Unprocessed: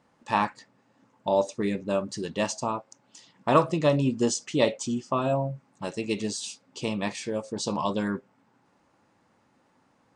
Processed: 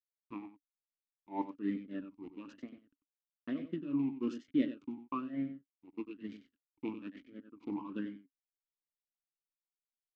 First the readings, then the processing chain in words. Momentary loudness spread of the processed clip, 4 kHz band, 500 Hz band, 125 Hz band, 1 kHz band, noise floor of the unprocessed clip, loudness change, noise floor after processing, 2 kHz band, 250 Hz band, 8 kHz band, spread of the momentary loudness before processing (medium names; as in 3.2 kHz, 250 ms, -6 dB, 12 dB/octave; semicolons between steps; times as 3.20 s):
17 LU, -24.0 dB, -21.0 dB, -19.0 dB, -18.5 dB, -67 dBFS, -12.0 dB, under -85 dBFS, -18.5 dB, -7.0 dB, under -35 dB, 11 LU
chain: rotary cabinet horn 1.1 Hz; hysteresis with a dead band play -27 dBFS; dynamic bell 660 Hz, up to +6 dB, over -41 dBFS, Q 3; tremolo 3.5 Hz, depth 82%; distance through air 110 m; delay 94 ms -10.5 dB; talking filter i-u 1.1 Hz; trim +5.5 dB